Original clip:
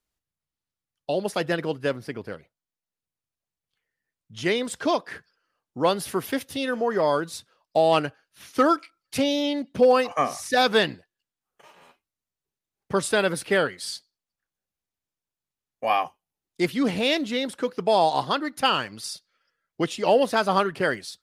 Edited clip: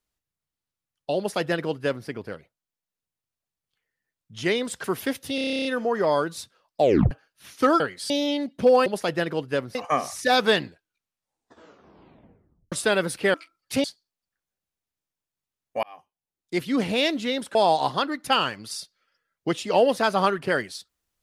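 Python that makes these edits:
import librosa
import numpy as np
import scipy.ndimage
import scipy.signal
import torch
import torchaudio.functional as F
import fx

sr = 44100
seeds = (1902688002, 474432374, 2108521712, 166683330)

y = fx.edit(x, sr, fx.duplicate(start_s=1.18, length_s=0.89, to_s=10.02),
    fx.cut(start_s=4.84, length_s=1.26),
    fx.stutter(start_s=6.61, slice_s=0.03, count=11),
    fx.tape_stop(start_s=7.77, length_s=0.3),
    fx.swap(start_s=8.76, length_s=0.5, other_s=13.61, other_length_s=0.3),
    fx.tape_stop(start_s=10.91, length_s=2.08),
    fx.fade_in_span(start_s=15.9, length_s=0.98),
    fx.cut(start_s=17.62, length_s=0.26), tone=tone)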